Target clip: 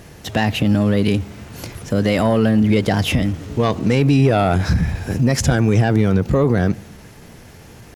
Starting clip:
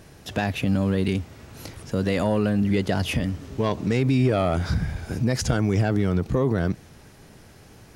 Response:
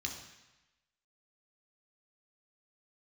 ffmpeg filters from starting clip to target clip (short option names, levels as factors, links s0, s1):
-filter_complex "[0:a]asetrate=46722,aresample=44100,atempo=0.943874,asplit=2[s0][s1];[1:a]atrim=start_sample=2205,asetrate=37044,aresample=44100,lowpass=2800[s2];[s1][s2]afir=irnorm=-1:irlink=0,volume=0.0944[s3];[s0][s3]amix=inputs=2:normalize=0,acontrast=74"